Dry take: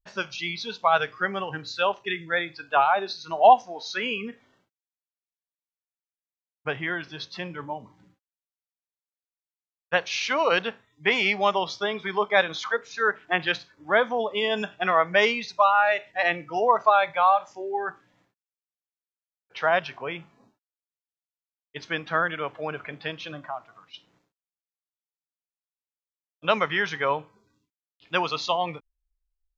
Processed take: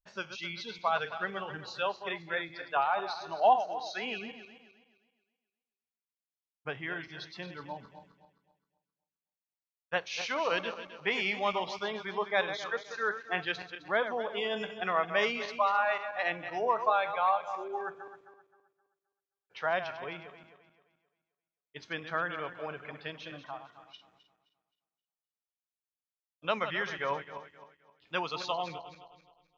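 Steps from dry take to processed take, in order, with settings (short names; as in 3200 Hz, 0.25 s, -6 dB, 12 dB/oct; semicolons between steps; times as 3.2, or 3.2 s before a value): regenerating reverse delay 0.131 s, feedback 56%, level -10 dB; gain -8.5 dB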